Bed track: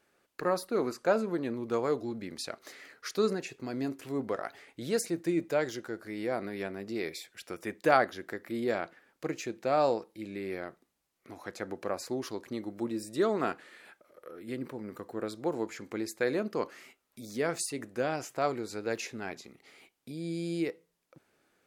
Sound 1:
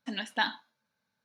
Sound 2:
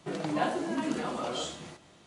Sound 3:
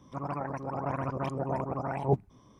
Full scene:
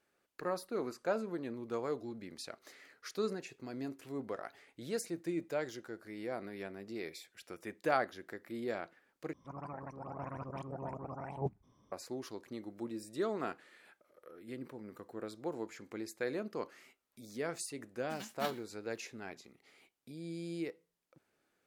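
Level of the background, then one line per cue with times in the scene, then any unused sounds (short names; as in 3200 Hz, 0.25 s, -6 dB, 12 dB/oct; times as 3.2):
bed track -7.5 dB
9.33 replace with 3 -10.5 dB
18.03 add 1 -13.5 dB + spectral whitening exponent 0.3
not used: 2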